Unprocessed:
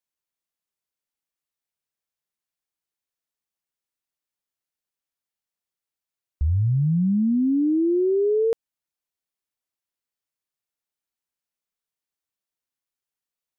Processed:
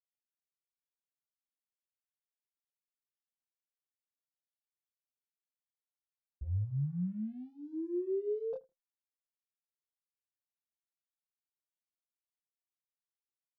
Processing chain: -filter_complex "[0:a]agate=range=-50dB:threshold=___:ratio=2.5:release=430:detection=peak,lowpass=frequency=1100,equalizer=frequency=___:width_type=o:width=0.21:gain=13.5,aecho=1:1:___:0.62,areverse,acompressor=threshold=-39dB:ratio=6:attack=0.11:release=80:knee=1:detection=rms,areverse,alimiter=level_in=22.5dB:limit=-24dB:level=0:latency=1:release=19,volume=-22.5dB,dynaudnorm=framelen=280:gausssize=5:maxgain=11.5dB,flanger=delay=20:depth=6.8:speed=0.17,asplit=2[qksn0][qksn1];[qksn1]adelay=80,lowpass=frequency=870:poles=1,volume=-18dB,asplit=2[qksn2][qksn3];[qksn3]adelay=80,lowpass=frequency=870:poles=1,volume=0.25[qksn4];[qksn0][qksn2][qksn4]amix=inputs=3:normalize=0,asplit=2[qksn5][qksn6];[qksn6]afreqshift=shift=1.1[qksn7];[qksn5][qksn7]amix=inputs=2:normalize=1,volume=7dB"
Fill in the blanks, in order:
-9dB, 520, 5.7